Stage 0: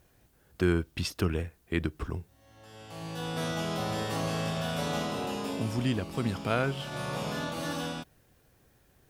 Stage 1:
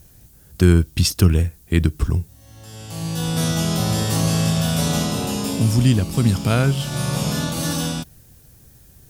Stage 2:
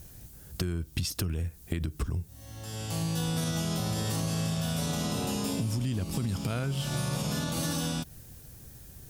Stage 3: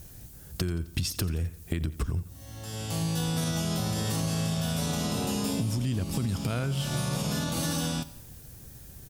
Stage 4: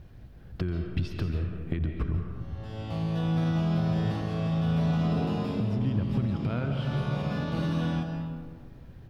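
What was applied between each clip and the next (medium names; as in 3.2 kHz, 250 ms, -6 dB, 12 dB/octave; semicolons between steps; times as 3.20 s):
tone controls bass +12 dB, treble +14 dB; trim +5 dB
peak limiter -12.5 dBFS, peak gain reduction 11 dB; compression 6:1, threshold -28 dBFS, peak gain reduction 11.5 dB
feedback delay 87 ms, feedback 53%, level -18 dB; trim +1.5 dB
distance through air 360 m; algorithmic reverb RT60 1.8 s, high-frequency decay 0.45×, pre-delay 105 ms, DRR 4 dB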